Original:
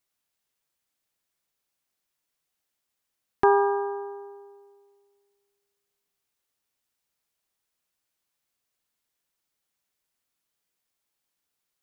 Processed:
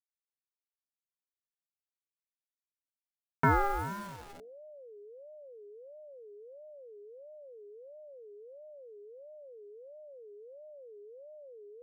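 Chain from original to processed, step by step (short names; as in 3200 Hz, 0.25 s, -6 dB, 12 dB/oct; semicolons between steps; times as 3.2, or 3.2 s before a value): level-crossing sampler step -37 dBFS; notches 50/100/150/200/250 Hz; ring modulator with a swept carrier 510 Hz, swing 20%, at 1.5 Hz; gain -3 dB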